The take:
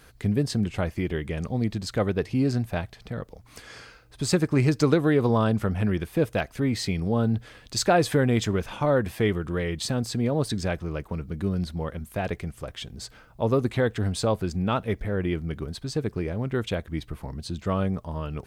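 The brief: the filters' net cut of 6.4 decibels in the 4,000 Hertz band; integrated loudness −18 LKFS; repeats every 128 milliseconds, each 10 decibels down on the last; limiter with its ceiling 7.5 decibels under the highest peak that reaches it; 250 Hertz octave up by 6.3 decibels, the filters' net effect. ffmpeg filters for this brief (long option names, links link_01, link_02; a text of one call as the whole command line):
ffmpeg -i in.wav -af "equalizer=frequency=250:width_type=o:gain=8,equalizer=frequency=4000:width_type=o:gain=-8,alimiter=limit=-11dB:level=0:latency=1,aecho=1:1:128|256|384|512:0.316|0.101|0.0324|0.0104,volume=5.5dB" out.wav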